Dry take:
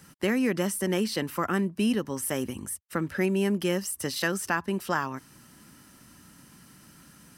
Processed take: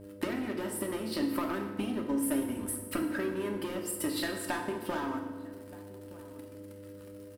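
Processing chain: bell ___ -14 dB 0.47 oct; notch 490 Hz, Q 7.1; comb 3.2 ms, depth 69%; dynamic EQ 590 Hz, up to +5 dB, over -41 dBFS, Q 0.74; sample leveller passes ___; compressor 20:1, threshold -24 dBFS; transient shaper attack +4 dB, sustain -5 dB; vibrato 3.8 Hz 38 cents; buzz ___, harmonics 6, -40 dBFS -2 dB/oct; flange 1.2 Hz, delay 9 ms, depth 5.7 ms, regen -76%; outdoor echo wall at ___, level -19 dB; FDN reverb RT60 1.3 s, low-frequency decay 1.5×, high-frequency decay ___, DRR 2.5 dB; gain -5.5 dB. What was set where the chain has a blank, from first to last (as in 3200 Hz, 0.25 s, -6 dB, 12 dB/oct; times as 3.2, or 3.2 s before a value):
6300 Hz, 3, 100 Hz, 210 m, 0.75×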